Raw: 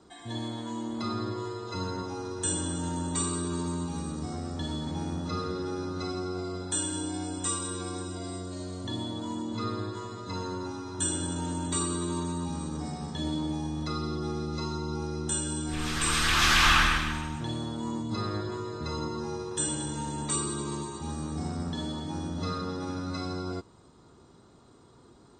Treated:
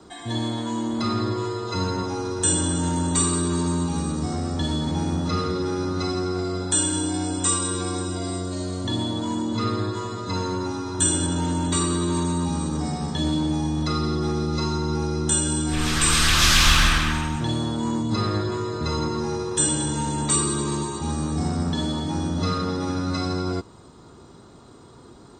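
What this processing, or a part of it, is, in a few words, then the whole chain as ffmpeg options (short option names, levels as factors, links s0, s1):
one-band saturation: -filter_complex "[0:a]asettb=1/sr,asplit=3[s0][s1][s2];[s0]atrim=end=11.264[s3];[s1]atrim=start=11.26:end=12.14,asetpts=PTS-STARTPTS,afade=t=in:d=0.004:c=qsin,afade=t=out:st=0.876:d=0.004:c=qsin,lowpass=7100[s4];[s2]atrim=start=12.136[s5];[s3][s4]acrossfade=d=0.004:c1=hsin:c2=qsin[s6];[s6][s5]acrossfade=d=0.004:c1=qsin:c2=hsin,acrossover=split=230|3400[s7][s8][s9];[s8]asoftclip=type=tanh:threshold=0.0299[s10];[s7][s10][s9]amix=inputs=3:normalize=0,volume=2.82"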